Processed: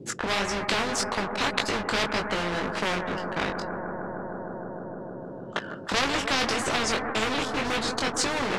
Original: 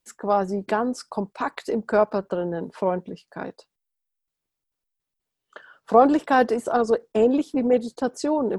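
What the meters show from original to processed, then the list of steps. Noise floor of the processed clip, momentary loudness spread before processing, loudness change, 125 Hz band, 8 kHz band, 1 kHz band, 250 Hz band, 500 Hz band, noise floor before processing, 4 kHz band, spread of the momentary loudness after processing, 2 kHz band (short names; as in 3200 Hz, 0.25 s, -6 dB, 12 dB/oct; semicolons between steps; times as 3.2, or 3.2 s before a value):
-39 dBFS, 13 LU, -4.5 dB, +1.0 dB, n/a, -4.0 dB, -7.0 dB, -8.0 dB, -84 dBFS, +15.0 dB, 11 LU, +6.5 dB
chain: low shelf 320 Hz +8 dB; sample leveller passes 2; chorus 1.8 Hz, delay 18 ms, depth 4.6 ms; in parallel at -11.5 dB: wavefolder -13.5 dBFS; on the sum: band noise 110–420 Hz -56 dBFS; air absorption 66 m; on a send: analogue delay 0.154 s, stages 2048, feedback 84%, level -18.5 dB; on the sum: spectral compressor 4:1; gain -2 dB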